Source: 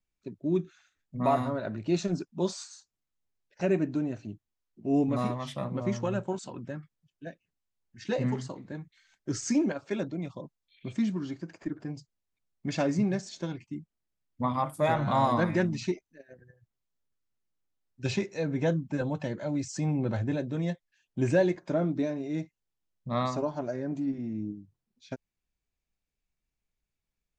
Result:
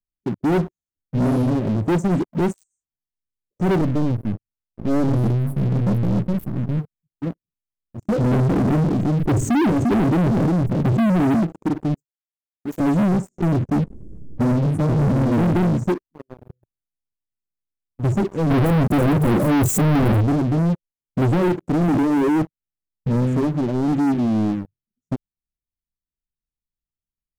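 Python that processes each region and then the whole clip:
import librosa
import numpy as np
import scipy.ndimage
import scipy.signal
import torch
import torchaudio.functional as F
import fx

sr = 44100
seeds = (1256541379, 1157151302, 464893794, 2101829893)

y = fx.chain(x, sr, fx.halfwave_gain(db=-12.0),
    fx.peak_eq(hz=140.0, db=6.0, octaves=2.0),
    fx.fixed_phaser(hz=2000.0, stages=6), at=(3.81, 6.79))
y = fx.chain(y, sr, fx.lowpass(hz=1300.0, slope=6),
    fx.echo_single(ms=348, db=-17.5),
    fx.env_flatten(amount_pct=70), at=(8.31, 11.43))
y = fx.chain(y, sr, fx.highpass(hz=700.0, slope=12),
    fx.leveller(passes=1), at=(11.94, 12.8))
y = fx.chain(y, sr, fx.lowpass(hz=4400.0, slope=24),
    fx.env_flatten(amount_pct=50), at=(13.38, 15.53))
y = fx.chain(y, sr, fx.leveller(passes=5),
    fx.clip_hard(threshold_db=-20.0), at=(18.5, 20.21))
y = fx.chain(y, sr, fx.envelope_sharpen(power=2.0),
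    fx.highpass(hz=230.0, slope=6),
    fx.env_flatten(amount_pct=100), at=(21.88, 22.42))
y = scipy.signal.sosfilt(scipy.signal.cheby2(4, 60, [1100.0, 4200.0], 'bandstop', fs=sr, output='sos'), y)
y = fx.low_shelf(y, sr, hz=190.0, db=3.5)
y = fx.leveller(y, sr, passes=5)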